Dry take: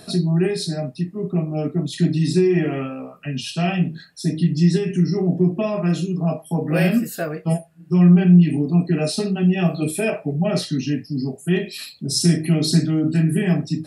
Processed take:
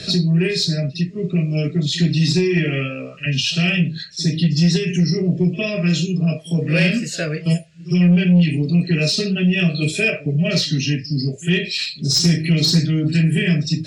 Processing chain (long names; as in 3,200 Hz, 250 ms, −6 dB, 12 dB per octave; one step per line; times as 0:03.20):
drawn EQ curve 150 Hz 0 dB, 230 Hz −9 dB, 580 Hz −4 dB, 830 Hz −25 dB, 1,300 Hz −8 dB, 2,300 Hz +5 dB, 4,800 Hz +6 dB, 7,000 Hz +4 dB, 13,000 Hz −30 dB
echo ahead of the sound 59 ms −21 dB
in parallel at −8.5 dB: sine wavefolder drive 3 dB, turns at −9.5 dBFS
on the sum: multiband upward and downward compressor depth 40%